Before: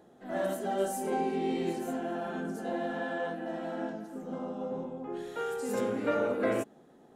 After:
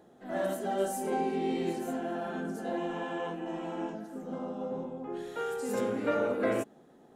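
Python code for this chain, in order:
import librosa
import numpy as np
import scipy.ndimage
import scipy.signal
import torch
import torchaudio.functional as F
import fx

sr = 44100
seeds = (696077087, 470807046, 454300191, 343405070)

y = fx.ripple_eq(x, sr, per_octave=0.72, db=10, at=(2.77, 3.95))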